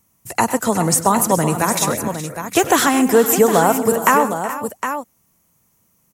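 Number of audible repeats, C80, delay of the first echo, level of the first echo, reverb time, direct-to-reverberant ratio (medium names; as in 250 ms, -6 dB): 5, no reverb, 100 ms, -17.5 dB, no reverb, no reverb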